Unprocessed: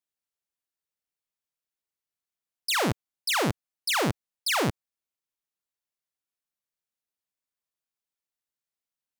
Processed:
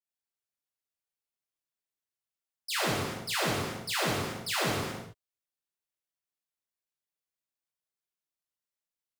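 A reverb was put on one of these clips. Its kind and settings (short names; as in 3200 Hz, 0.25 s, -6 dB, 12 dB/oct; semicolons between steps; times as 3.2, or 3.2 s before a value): non-linear reverb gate 0.45 s falling, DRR -7.5 dB; gain -11.5 dB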